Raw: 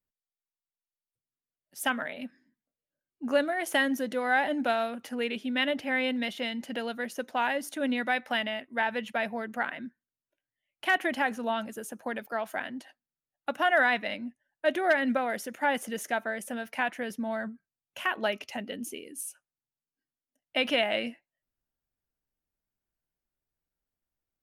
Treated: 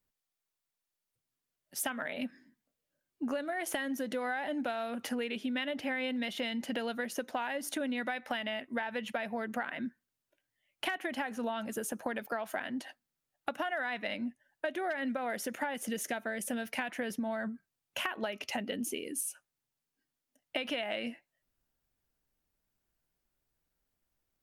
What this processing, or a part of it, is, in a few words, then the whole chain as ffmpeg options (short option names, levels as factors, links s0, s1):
serial compression, leveller first: -filter_complex "[0:a]asettb=1/sr,asplit=3[s0][s1][s2];[s0]atrim=end=15.744[s3];[s1]atrim=start=15.74:end=16.9,asetpts=PTS-STARTPTS,afade=t=in:d=0.004:c=qsin,afade=t=out:st=1.156:d=0.004:c=qsin,equalizer=f=1000:t=o:w=1.8:g=-6[s4];[s2]atrim=start=16.896[s5];[s3][s4]acrossfade=d=0.004:c1=hsin:c2=qsin[s6];[s6][s5]acrossfade=d=0.004:c1=qsin:c2=hsin,acompressor=threshold=0.0355:ratio=2.5,acompressor=threshold=0.0112:ratio=6,volume=2.11"